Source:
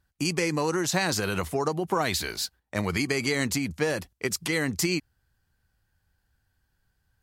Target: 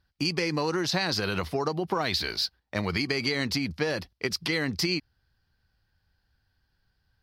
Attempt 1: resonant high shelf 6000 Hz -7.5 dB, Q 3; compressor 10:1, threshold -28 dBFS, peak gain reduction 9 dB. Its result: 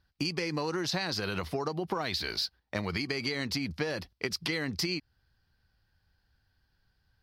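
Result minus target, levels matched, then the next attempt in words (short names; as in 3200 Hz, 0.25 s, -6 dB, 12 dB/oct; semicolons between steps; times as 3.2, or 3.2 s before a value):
compressor: peak gain reduction +5.5 dB
resonant high shelf 6000 Hz -7.5 dB, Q 3; compressor 10:1, threshold -22 dBFS, peak gain reduction 3.5 dB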